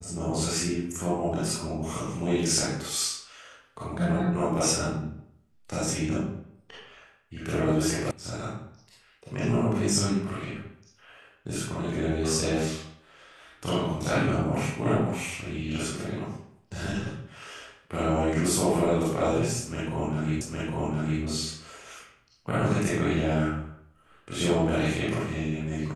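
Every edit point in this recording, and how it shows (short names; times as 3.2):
8.11 sound cut off
20.41 repeat of the last 0.81 s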